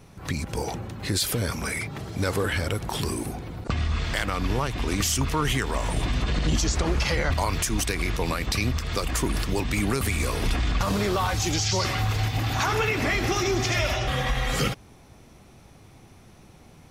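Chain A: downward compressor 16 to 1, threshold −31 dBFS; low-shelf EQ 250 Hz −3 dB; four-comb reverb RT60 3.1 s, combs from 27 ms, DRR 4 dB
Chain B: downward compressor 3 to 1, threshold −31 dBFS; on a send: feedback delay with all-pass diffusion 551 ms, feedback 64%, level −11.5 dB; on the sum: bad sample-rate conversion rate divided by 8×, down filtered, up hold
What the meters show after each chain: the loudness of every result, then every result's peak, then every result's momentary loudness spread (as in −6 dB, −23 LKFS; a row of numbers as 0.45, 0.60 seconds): −35.0, −33.5 LKFS; −15.0, −18.0 dBFS; 11, 10 LU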